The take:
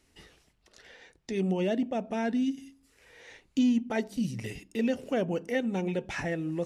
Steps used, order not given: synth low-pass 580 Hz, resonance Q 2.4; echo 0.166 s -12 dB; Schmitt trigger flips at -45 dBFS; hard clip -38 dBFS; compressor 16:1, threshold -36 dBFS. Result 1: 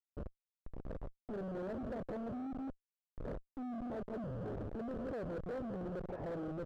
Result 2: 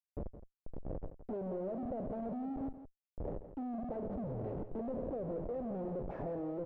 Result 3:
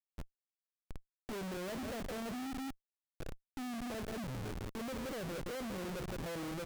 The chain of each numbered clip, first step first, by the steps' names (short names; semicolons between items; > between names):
echo > compressor > Schmitt trigger > synth low-pass > hard clip; Schmitt trigger > hard clip > synth low-pass > compressor > echo; echo > compressor > hard clip > synth low-pass > Schmitt trigger